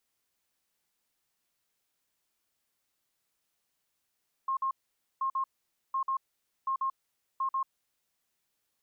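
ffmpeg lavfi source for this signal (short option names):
-f lavfi -i "aevalsrc='0.0447*sin(2*PI*1070*t)*clip(min(mod(mod(t,0.73),0.14),0.09-mod(mod(t,0.73),0.14))/0.005,0,1)*lt(mod(t,0.73),0.28)':d=3.65:s=44100"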